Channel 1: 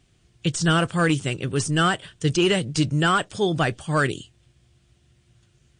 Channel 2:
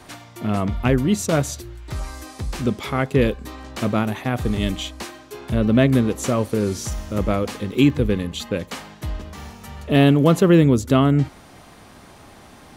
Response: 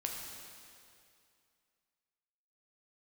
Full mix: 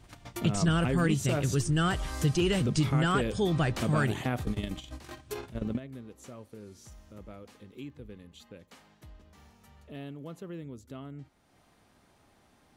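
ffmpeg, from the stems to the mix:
-filter_complex "[0:a]lowshelf=f=170:g=11.5,volume=0.794,asplit=2[s0][s1];[1:a]bandreject=f=1100:w=24,acompressor=threshold=0.0141:ratio=1.5,volume=1.33[s2];[s1]apad=whole_len=563091[s3];[s2][s3]sidechaingate=range=0.0891:threshold=0.00282:ratio=16:detection=peak[s4];[s0][s4]amix=inputs=2:normalize=0,acompressor=threshold=0.0355:ratio=2"

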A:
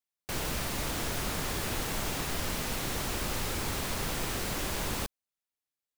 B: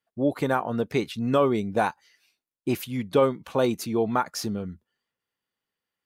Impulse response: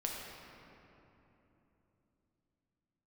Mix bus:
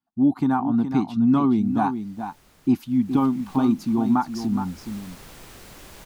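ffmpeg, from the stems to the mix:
-filter_complex "[0:a]adelay=1200,volume=0.282,afade=t=in:st=2.81:d=0.37:silence=0.237137[s0];[1:a]firequalizer=gain_entry='entry(120,0);entry(260,10);entry(500,-24);entry(770,3);entry(1900,-12);entry(4800,-7);entry(8700,-13)':delay=0.05:min_phase=1,volume=1.12,asplit=3[s1][s2][s3];[s2]volume=0.355[s4];[s3]apad=whole_len=316371[s5];[s0][s5]sidechaincompress=threshold=0.0447:ratio=8:attack=16:release=488[s6];[s4]aecho=0:1:419:1[s7];[s6][s1][s7]amix=inputs=3:normalize=0"

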